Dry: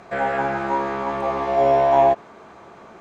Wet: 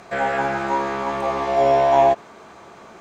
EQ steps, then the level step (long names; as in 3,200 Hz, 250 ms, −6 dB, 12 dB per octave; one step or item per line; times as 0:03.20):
high-shelf EQ 3,400 Hz +9.5 dB
0.0 dB